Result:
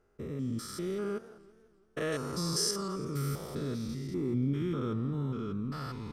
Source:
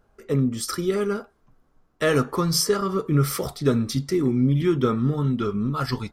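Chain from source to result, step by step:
spectrum averaged block by block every 200 ms
0:02.12–0:02.71: flat-topped bell 6,500 Hz +8.5 dB
feedback echo with a swinging delay time 168 ms, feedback 58%, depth 216 cents, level −19.5 dB
level −9 dB

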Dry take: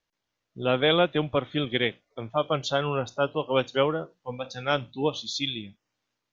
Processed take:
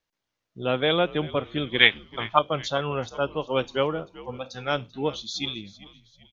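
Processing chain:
0:01.78–0:02.39: flat-topped bell 2,000 Hz +13.5 dB 3 octaves
echo with shifted repeats 389 ms, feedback 42%, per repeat −80 Hz, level −18.5 dB
level −1 dB

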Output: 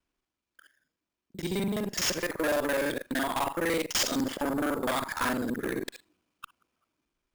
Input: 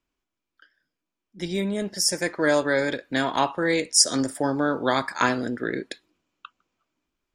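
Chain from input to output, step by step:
reversed piece by piece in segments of 42 ms
tube saturation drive 23 dB, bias 0.25
sample-rate reduction 12,000 Hz, jitter 0%

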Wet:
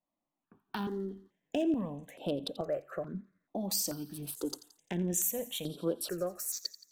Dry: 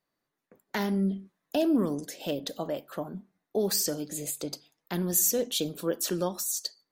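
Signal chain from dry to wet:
adaptive Wiener filter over 9 samples
camcorder AGC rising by 9.2 dB per second
on a send: delay with a high-pass on its return 86 ms, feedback 55%, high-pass 2,100 Hz, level −15 dB
on the sum: step-sequenced phaser 2.3 Hz 420–6,600 Hz
level −3 dB

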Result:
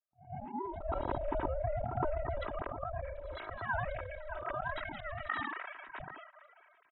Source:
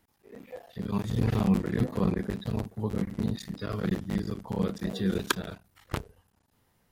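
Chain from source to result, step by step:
three sine waves on the formant tracks
noise gate with hold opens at −51 dBFS
notch filter 3,000 Hz, Q 21
comb filter 3.1 ms, depth 77%
volume swells 106 ms
downward compressor, threshold −27 dBFS, peak gain reduction 7.5 dB
on a send: backwards echo 115 ms −15.5 dB
on the sum: band-pass filter sweep 530 Hz → 1,400 Hz, 0:01.08–0:04.92
ring modulation 300 Hz
level that may fall only so fast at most 29 dB per second
level +8 dB

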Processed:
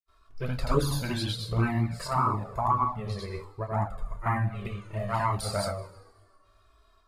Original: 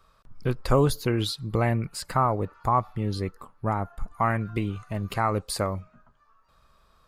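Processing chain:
coupled-rooms reverb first 0.47 s, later 1.8 s, from −18 dB, DRR 2 dB
granular cloud 200 ms, grains 20 per second, pitch spread up and down by 0 semitones
flanger swept by the level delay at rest 2.9 ms, full sweep at −16.5 dBFS
level +3 dB

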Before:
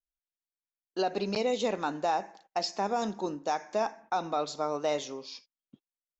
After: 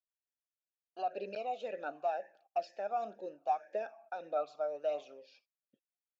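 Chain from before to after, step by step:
phase shifter 1.6 Hz, delay 1.5 ms, feedback 38%
formant filter swept between two vowels a-e 2 Hz
level +1 dB

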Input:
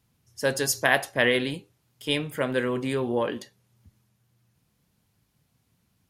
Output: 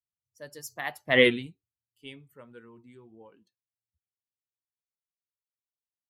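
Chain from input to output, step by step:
spectral dynamics exaggerated over time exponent 1.5
source passing by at 0:01.23, 24 m/s, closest 1.3 metres
level +6.5 dB

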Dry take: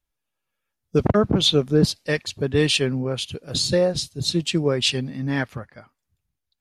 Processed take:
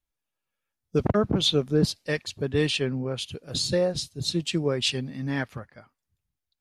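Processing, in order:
0:02.69–0:03.18: high-shelf EQ 5,500 Hz → 11,000 Hz −9.5 dB
0:04.53–0:05.60: one half of a high-frequency compander encoder only
level −4.5 dB

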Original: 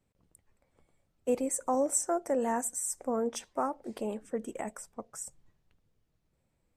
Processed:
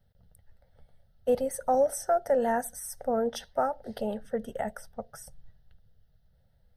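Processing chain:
low-shelf EQ 140 Hz +8.5 dB
phaser with its sweep stopped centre 1,600 Hz, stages 8
level +6.5 dB

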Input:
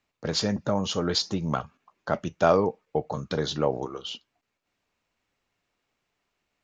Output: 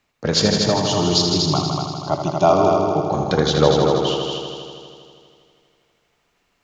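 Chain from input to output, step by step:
0:00.50–0:03.04: phaser with its sweep stopped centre 330 Hz, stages 8
echo machine with several playback heads 80 ms, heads all three, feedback 60%, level −7.5 dB
level +8.5 dB

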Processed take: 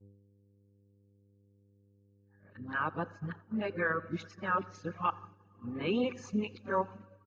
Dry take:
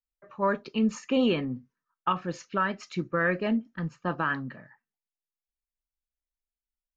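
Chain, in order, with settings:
played backwards from end to start
spectral tilt +1.5 dB per octave
dense smooth reverb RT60 2.4 s, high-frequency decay 0.85×, DRR 8 dB
wrong playback speed 25 fps video run at 24 fps
high-shelf EQ 2,800 Hz −9 dB
repeating echo 85 ms, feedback 47%, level −14.5 dB
hum with harmonics 100 Hz, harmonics 5, −45 dBFS −6 dB per octave
reverb reduction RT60 1 s
downward expander −39 dBFS
level −3.5 dB

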